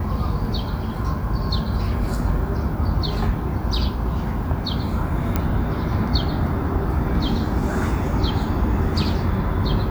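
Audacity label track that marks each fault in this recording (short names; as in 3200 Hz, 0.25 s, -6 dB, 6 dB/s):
5.360000	5.360000	pop -7 dBFS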